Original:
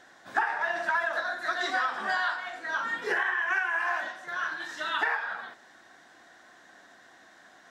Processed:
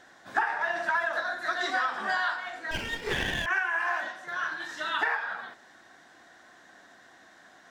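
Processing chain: 2.71–3.46 minimum comb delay 0.41 ms; low shelf 160 Hz +4 dB

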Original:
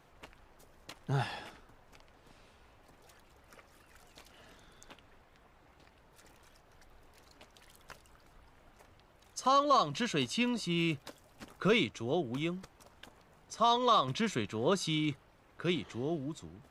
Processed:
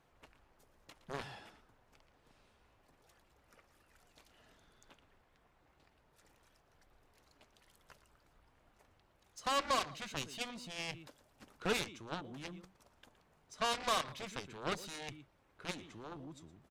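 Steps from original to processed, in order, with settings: outdoor echo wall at 20 m, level -14 dB; added harmonics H 5 -26 dB, 7 -10 dB, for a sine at -15.5 dBFS; gain -8 dB

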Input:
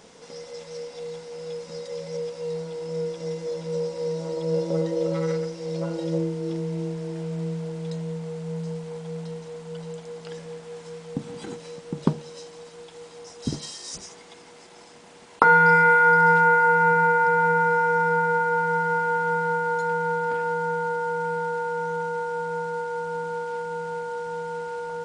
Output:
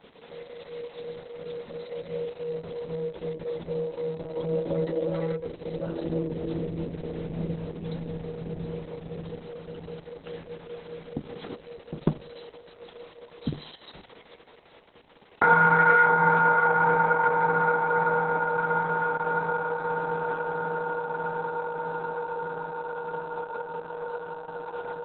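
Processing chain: 13.92–15.43 expander -45 dBFS; gain -1.5 dB; Opus 6 kbps 48000 Hz

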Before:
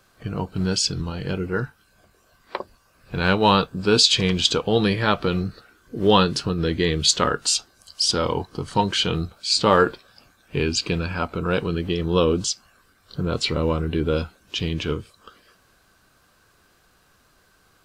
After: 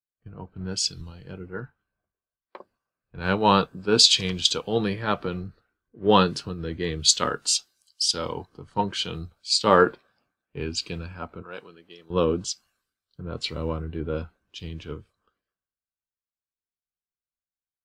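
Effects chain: 11.42–12.1 HPF 710 Hz 6 dB/oct; three-band expander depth 100%; gain -8 dB

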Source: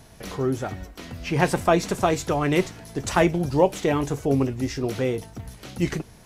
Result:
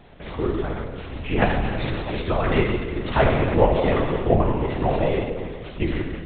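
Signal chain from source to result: 1.45–2.21 negative-ratio compressor -26 dBFS, ratio -0.5; 4.31–4.96 small resonant body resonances 690/990 Hz, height 17 dB; Schroeder reverb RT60 1.7 s, combs from 25 ms, DRR -0.5 dB; LPC vocoder at 8 kHz whisper

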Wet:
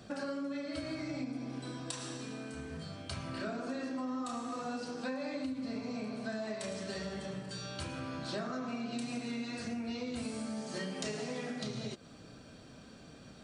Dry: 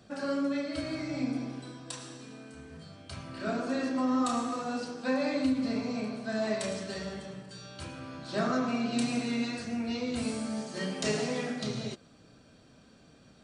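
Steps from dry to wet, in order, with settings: compressor 6:1, threshold -41 dBFS, peak gain reduction 16 dB; gain +4.5 dB

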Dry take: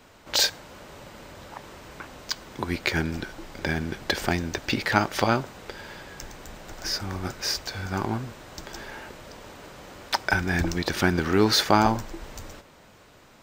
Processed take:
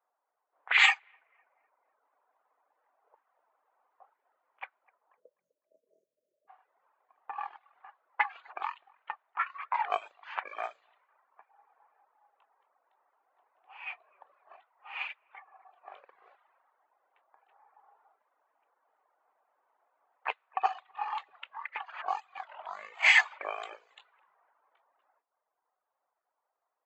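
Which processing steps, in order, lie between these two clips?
spectral delete 2.59–3.25, 1300–11000 Hz; low-pass opened by the level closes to 1200 Hz, open at -17.5 dBFS; speed mistake 15 ips tape played at 7.5 ips; HPF 890 Hz 24 dB/oct; high shelf 3700 Hz -10.5 dB; on a send: analogue delay 0.252 s, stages 4096, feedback 33%, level -16 dB; on the sum: reverb removal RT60 0.91 s; upward expander 1.5:1, over -52 dBFS; gain +4.5 dB

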